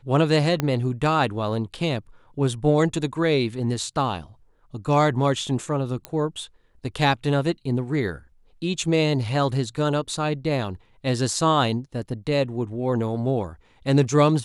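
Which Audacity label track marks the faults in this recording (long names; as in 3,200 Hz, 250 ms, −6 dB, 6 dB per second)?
0.600000	0.600000	click −9 dBFS
6.050000	6.050000	click −15 dBFS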